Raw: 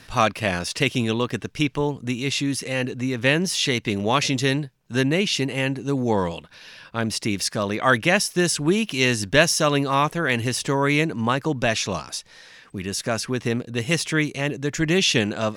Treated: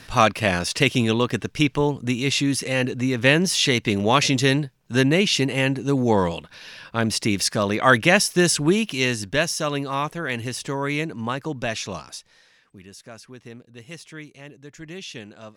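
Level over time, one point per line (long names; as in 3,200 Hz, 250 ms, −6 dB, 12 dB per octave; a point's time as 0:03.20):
0:08.57 +2.5 dB
0:09.37 −5 dB
0:12.07 −5 dB
0:12.99 −17 dB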